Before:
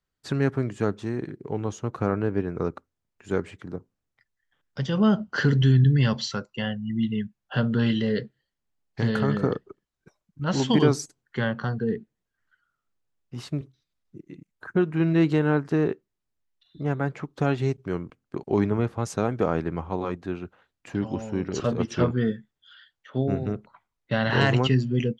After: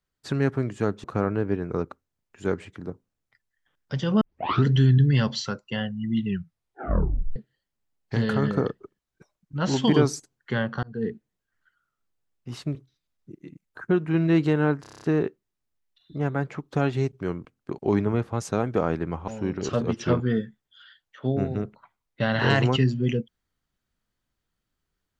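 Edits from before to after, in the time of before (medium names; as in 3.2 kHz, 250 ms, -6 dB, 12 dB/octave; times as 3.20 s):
1.04–1.90 s: delete
5.07 s: tape start 0.44 s
7.10 s: tape stop 1.12 s
11.69–11.94 s: fade in
15.67 s: stutter 0.03 s, 8 plays
19.93–21.19 s: delete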